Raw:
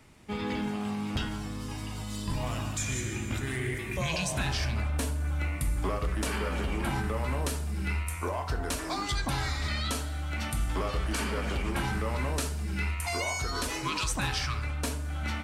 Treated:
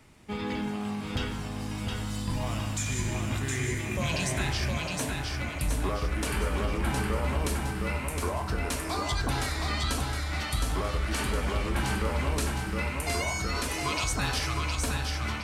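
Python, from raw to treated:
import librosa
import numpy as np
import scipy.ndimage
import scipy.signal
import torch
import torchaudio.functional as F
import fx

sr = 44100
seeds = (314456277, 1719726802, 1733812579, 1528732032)

y = fx.steep_highpass(x, sr, hz=230.0, slope=96, at=(4.77, 5.56))
y = fx.echo_feedback(y, sr, ms=714, feedback_pct=42, wet_db=-3.5)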